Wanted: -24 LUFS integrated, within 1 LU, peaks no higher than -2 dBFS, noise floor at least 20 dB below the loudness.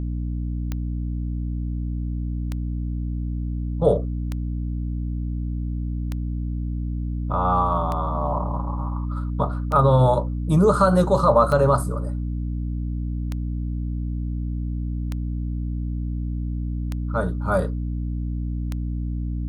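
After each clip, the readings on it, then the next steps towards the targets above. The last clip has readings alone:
clicks 11; hum 60 Hz; harmonics up to 300 Hz; hum level -24 dBFS; loudness -24.5 LUFS; peak -4.5 dBFS; loudness target -24.0 LUFS
-> de-click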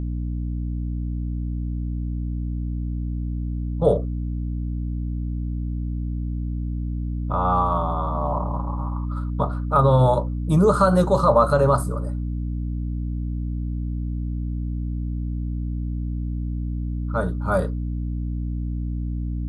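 clicks 0; hum 60 Hz; harmonics up to 300 Hz; hum level -24 dBFS
-> notches 60/120/180/240/300 Hz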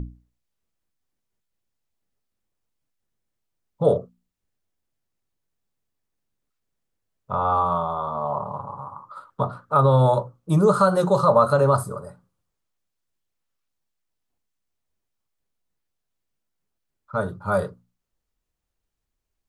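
hum none; loudness -21.5 LUFS; peak -5.5 dBFS; loudness target -24.0 LUFS
-> gain -2.5 dB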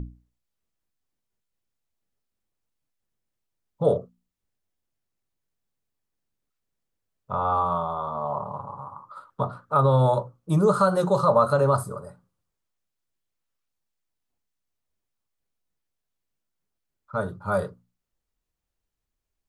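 loudness -24.0 LUFS; peak -8.0 dBFS; noise floor -83 dBFS

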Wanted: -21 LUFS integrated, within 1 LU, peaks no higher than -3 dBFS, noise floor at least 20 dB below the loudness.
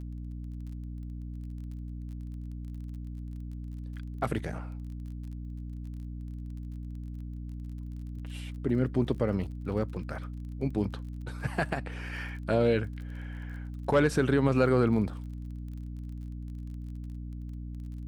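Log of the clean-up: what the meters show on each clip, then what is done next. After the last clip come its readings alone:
ticks 29/s; hum 60 Hz; harmonics up to 300 Hz; hum level -36 dBFS; loudness -33.5 LUFS; peak -12.0 dBFS; loudness target -21.0 LUFS
-> de-click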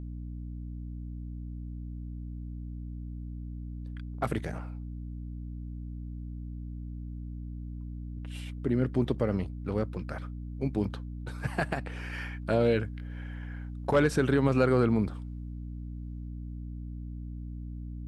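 ticks 0/s; hum 60 Hz; harmonics up to 300 Hz; hum level -36 dBFS
-> de-hum 60 Hz, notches 5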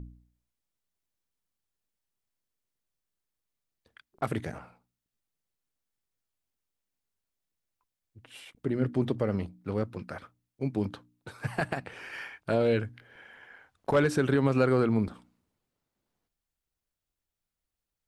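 hum none; loudness -29.5 LUFS; peak -12.5 dBFS; loudness target -21.0 LUFS
-> gain +8.5 dB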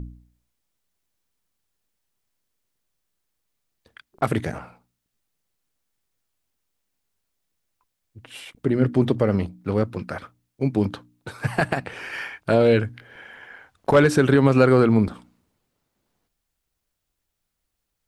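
loudness -21.0 LUFS; peak -4.0 dBFS; noise floor -79 dBFS

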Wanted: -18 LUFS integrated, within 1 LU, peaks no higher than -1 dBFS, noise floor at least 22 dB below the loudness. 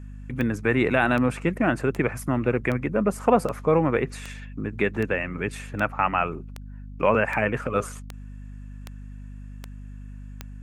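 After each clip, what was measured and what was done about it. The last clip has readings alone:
clicks 14; hum 50 Hz; harmonics up to 250 Hz; hum level -36 dBFS; loudness -24.5 LUFS; peak -6.0 dBFS; loudness target -18.0 LUFS
-> de-click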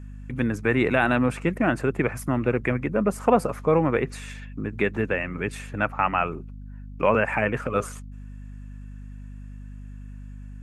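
clicks 0; hum 50 Hz; harmonics up to 250 Hz; hum level -36 dBFS
-> de-hum 50 Hz, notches 5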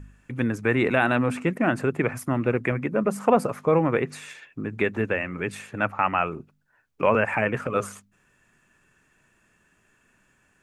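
hum none; loudness -24.5 LUFS; peak -6.0 dBFS; loudness target -18.0 LUFS
-> gain +6.5 dB; limiter -1 dBFS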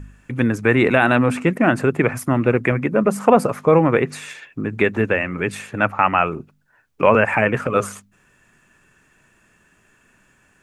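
loudness -18.5 LUFS; peak -1.0 dBFS; noise floor -59 dBFS

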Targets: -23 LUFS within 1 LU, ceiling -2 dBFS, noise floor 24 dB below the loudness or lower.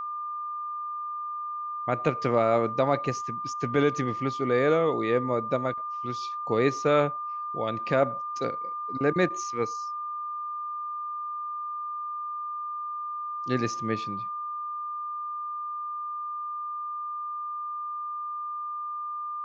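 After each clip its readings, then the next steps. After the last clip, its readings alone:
steady tone 1200 Hz; tone level -31 dBFS; loudness -29.5 LUFS; peak -10.0 dBFS; loudness target -23.0 LUFS
-> notch 1200 Hz, Q 30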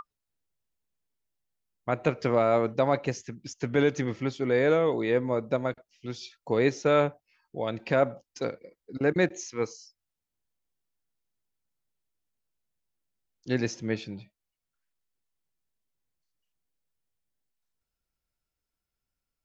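steady tone none; loudness -27.5 LUFS; peak -10.0 dBFS; loudness target -23.0 LUFS
-> gain +4.5 dB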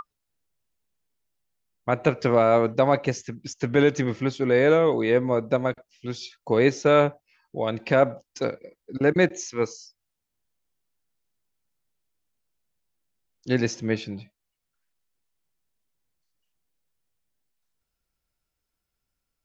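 loudness -23.0 LUFS; peak -5.5 dBFS; noise floor -82 dBFS

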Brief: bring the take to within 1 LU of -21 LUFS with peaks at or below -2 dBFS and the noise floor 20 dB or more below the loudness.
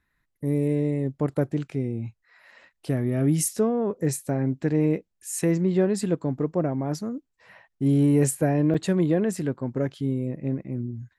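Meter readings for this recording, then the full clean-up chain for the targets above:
dropouts 1; longest dropout 5.5 ms; loudness -25.5 LUFS; peak -9.5 dBFS; loudness target -21.0 LUFS
-> interpolate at 8.74, 5.5 ms; gain +4.5 dB

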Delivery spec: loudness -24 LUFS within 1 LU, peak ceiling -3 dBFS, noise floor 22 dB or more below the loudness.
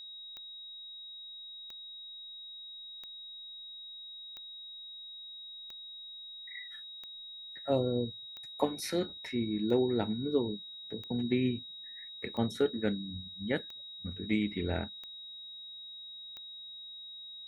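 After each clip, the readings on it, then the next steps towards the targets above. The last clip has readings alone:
clicks 13; steady tone 3800 Hz; tone level -44 dBFS; loudness -37.0 LUFS; peak -13.0 dBFS; loudness target -24.0 LUFS
-> de-click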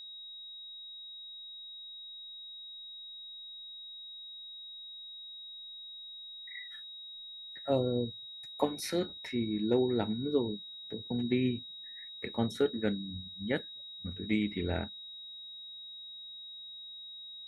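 clicks 0; steady tone 3800 Hz; tone level -44 dBFS
-> notch 3800 Hz, Q 30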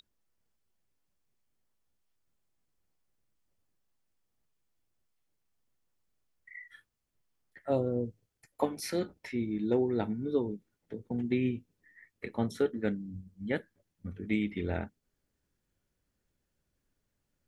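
steady tone none; loudness -33.5 LUFS; peak -13.0 dBFS; loudness target -24.0 LUFS
-> gain +9.5 dB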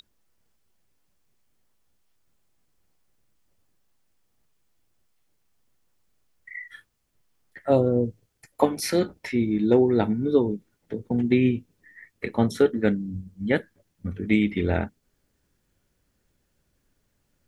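loudness -24.0 LUFS; peak -3.5 dBFS; noise floor -73 dBFS

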